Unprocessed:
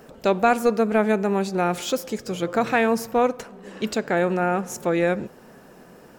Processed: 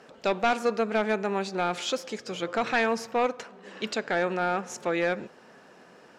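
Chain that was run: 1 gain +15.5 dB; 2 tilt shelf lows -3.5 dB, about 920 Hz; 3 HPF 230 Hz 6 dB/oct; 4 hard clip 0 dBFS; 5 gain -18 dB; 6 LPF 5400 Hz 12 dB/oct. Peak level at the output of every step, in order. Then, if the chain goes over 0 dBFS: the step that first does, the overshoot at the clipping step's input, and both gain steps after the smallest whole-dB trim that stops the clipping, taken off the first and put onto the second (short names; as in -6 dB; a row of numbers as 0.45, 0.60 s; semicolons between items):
+7.0, +8.5, +9.5, 0.0, -18.0, -17.5 dBFS; step 1, 9.5 dB; step 1 +5.5 dB, step 5 -8 dB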